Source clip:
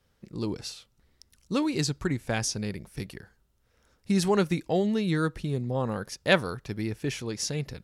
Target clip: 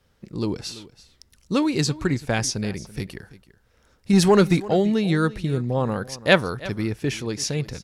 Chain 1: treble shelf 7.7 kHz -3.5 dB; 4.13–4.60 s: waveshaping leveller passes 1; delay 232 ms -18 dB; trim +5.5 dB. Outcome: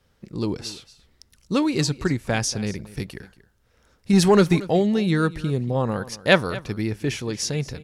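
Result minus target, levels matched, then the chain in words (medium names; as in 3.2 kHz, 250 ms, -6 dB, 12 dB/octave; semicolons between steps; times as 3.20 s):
echo 102 ms early
treble shelf 7.7 kHz -3.5 dB; 4.13–4.60 s: waveshaping leveller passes 1; delay 334 ms -18 dB; trim +5.5 dB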